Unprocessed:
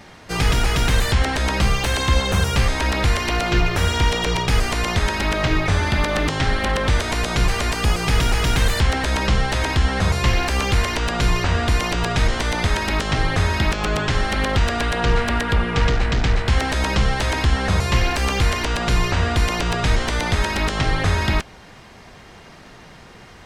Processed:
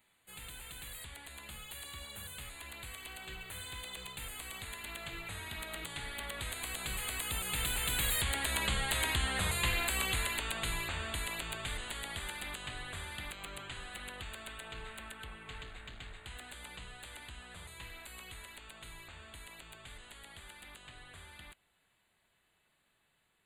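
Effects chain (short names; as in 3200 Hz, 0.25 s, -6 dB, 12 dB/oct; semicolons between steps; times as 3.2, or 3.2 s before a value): Doppler pass-by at 9.22, 24 m/s, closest 28 m; Butterworth band-stop 5500 Hz, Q 1.5; pre-emphasis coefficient 0.9; gain +2.5 dB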